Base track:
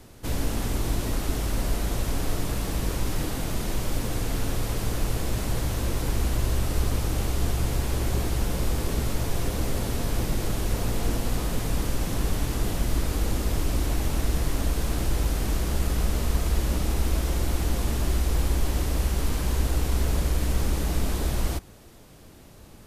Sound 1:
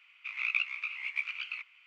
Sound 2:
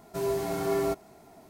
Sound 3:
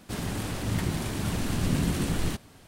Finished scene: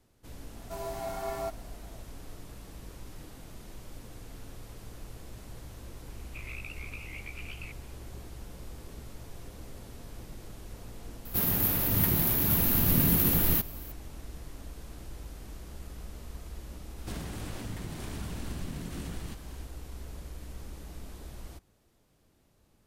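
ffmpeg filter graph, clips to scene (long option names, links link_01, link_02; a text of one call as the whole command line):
ffmpeg -i bed.wav -i cue0.wav -i cue1.wav -i cue2.wav -filter_complex "[3:a]asplit=2[link_01][link_02];[0:a]volume=-18.5dB[link_03];[2:a]lowshelf=frequency=540:width_type=q:width=3:gain=-6[link_04];[1:a]acompressor=threshold=-33dB:ratio=6:attack=3.2:release=140:knee=1:detection=peak[link_05];[link_01]aexciter=amount=11.9:drive=9.5:freq=12000[link_06];[link_02]acompressor=threshold=-38dB:ratio=6:attack=50:release=167:knee=1:detection=rms[link_07];[link_04]atrim=end=1.49,asetpts=PTS-STARTPTS,volume=-6dB,afade=type=in:duration=0.004:curve=hsin,afade=type=out:start_time=1.486:duration=0.004:curve=hsin,adelay=560[link_08];[link_05]atrim=end=1.86,asetpts=PTS-STARTPTS,volume=-6dB,afade=type=in:duration=0.004:curve=hsin,afade=type=out:start_time=1.856:duration=0.004:curve=hsin,adelay=269010S[link_09];[link_06]atrim=end=2.67,asetpts=PTS-STARTPTS,volume=-0.5dB,afade=type=in:duration=0.004:curve=hsin,afade=type=out:start_time=2.666:duration=0.004:curve=hsin,adelay=11250[link_10];[link_07]atrim=end=2.67,asetpts=PTS-STARTPTS,volume=-1dB,afade=type=in:duration=0.004:curve=hsin,afade=type=out:start_time=2.666:duration=0.004:curve=hsin,adelay=16980[link_11];[link_03][link_08][link_09][link_10][link_11]amix=inputs=5:normalize=0" out.wav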